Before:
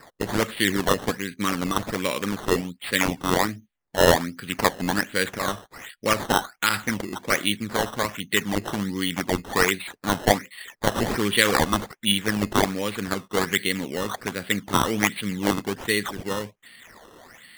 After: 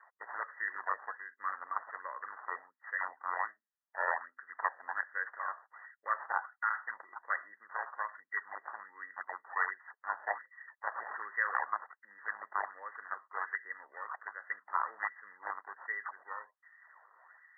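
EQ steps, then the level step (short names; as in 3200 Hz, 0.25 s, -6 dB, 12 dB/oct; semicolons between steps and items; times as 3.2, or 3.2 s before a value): HPF 1000 Hz 24 dB/oct; brick-wall FIR low-pass 2000 Hz; tilt -3 dB/oct; -6.0 dB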